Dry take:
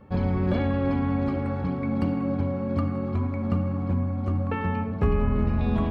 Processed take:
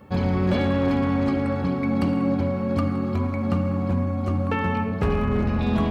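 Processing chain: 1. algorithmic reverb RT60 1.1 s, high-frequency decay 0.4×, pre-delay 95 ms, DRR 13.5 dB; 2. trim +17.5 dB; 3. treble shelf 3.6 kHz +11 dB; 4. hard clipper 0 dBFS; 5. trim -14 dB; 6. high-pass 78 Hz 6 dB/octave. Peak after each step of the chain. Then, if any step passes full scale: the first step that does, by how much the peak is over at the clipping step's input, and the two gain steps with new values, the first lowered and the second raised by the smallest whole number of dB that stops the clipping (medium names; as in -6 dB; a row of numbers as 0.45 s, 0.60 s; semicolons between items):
-11.0 dBFS, +6.5 dBFS, +7.0 dBFS, 0.0 dBFS, -14.0 dBFS, -11.5 dBFS; step 2, 7.0 dB; step 2 +10.5 dB, step 5 -7 dB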